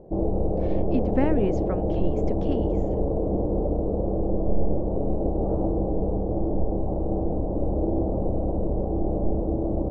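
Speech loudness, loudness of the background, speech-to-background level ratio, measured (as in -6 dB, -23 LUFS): -29.5 LUFS, -26.5 LUFS, -3.0 dB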